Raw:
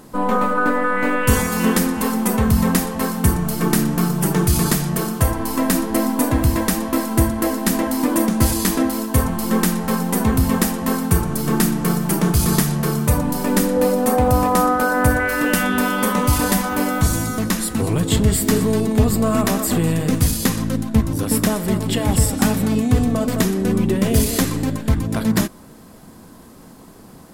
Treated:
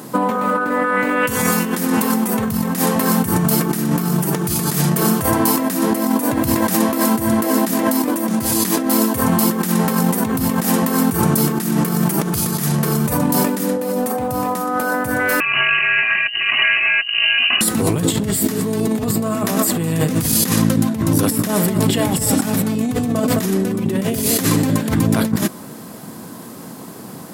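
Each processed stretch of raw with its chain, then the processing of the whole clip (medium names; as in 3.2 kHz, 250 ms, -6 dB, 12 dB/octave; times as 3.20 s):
15.40–17.61 s: distance through air 480 m + comb 2.3 ms, depth 90% + frequency inversion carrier 2.9 kHz
whole clip: high-pass 110 Hz 24 dB/octave; treble shelf 12 kHz +7 dB; compressor with a negative ratio -23 dBFS, ratio -1; trim +5 dB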